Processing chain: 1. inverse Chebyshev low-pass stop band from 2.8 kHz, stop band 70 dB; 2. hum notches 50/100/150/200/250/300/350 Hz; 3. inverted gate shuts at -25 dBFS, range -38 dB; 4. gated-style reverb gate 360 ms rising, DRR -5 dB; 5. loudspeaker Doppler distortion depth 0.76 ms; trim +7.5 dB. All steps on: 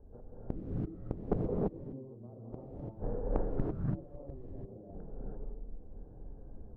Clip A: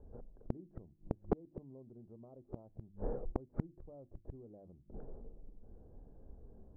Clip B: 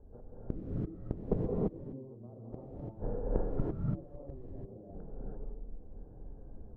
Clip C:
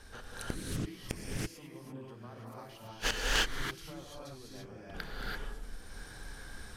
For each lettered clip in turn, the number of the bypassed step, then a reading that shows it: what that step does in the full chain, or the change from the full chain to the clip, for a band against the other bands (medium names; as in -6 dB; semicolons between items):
4, momentary loudness spread change +2 LU; 5, 1 kHz band -2.5 dB; 1, 2 kHz band +32.0 dB